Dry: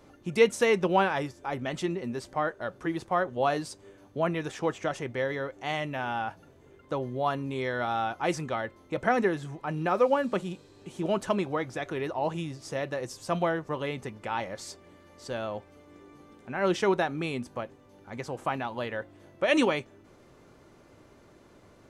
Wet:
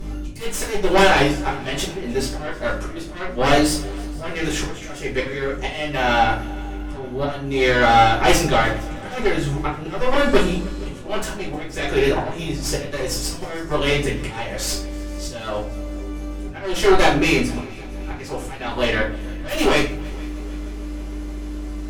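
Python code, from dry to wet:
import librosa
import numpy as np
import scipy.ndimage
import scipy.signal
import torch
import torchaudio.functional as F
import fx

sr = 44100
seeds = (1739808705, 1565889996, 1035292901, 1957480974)

p1 = fx.high_shelf(x, sr, hz=2300.0, db=10.0)
p2 = fx.cheby_harmonics(p1, sr, harmonics=(5, 6), levels_db=(-11, -7), full_scale_db=-9.5)
p3 = 10.0 ** (-16.5 / 20.0) * np.tanh(p2 / 10.0 ** (-16.5 / 20.0))
p4 = p2 + (p3 * 10.0 ** (-7.5 / 20.0))
p5 = fx.dmg_buzz(p4, sr, base_hz=50.0, harmonics=6, level_db=-33.0, tilt_db=-3, odd_only=False)
p6 = fx.auto_swell(p5, sr, attack_ms=449.0)
p7 = p6 + fx.echo_heads(p6, sr, ms=155, heads='second and third', feedback_pct=57, wet_db=-23, dry=0)
p8 = fx.room_shoebox(p7, sr, seeds[0], volume_m3=45.0, walls='mixed', distance_m=1.5)
y = p8 * 10.0 ** (-7.0 / 20.0)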